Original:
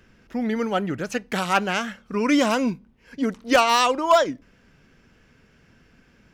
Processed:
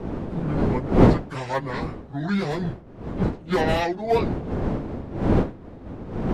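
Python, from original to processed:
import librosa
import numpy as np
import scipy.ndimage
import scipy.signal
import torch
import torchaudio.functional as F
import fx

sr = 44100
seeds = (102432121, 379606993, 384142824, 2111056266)

y = fx.pitch_bins(x, sr, semitones=-6.5)
y = fx.dmg_wind(y, sr, seeds[0], corner_hz=330.0, level_db=-21.0)
y = F.gain(torch.from_numpy(y), -4.0).numpy()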